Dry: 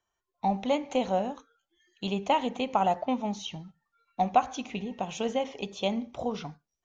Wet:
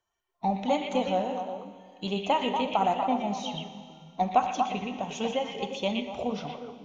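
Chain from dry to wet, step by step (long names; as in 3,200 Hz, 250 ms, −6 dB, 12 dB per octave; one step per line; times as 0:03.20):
spectral magnitudes quantised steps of 15 dB
on a send: echo through a band-pass that steps 119 ms, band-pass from 2,600 Hz, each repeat −1.4 octaves, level −0.5 dB
on the sum: four-comb reverb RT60 2.2 s, combs from 25 ms, DRR 10 dB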